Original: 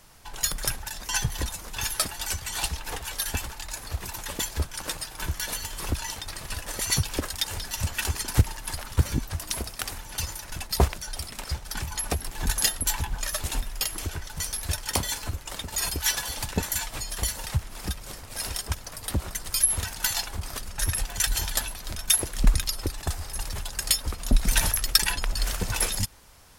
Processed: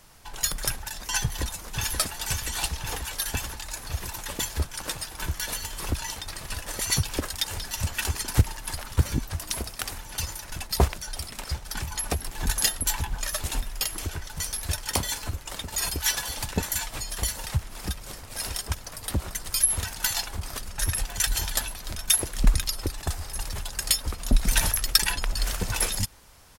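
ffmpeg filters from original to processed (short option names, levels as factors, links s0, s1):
-filter_complex "[0:a]asplit=2[s0][s1];[s1]afade=t=in:st=1.21:d=0.01,afade=t=out:st=1.95:d=0.01,aecho=0:1:530|1060|1590|2120|2650|3180|3710|4240|4770|5300|5830|6360:0.501187|0.37589|0.281918|0.211438|0.158579|0.118934|0.0892006|0.0669004|0.0501753|0.0376315|0.0282236|0.0211677[s2];[s0][s2]amix=inputs=2:normalize=0"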